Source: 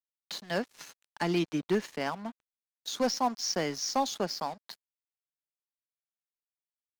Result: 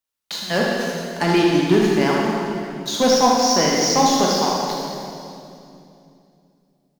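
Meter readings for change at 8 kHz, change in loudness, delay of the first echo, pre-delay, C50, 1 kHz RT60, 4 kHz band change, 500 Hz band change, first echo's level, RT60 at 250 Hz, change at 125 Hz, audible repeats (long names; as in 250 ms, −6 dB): +14.0 dB, +13.5 dB, 77 ms, 16 ms, −2.0 dB, 2.5 s, +14.0 dB, +14.5 dB, −6.5 dB, 3.7 s, +14.5 dB, 1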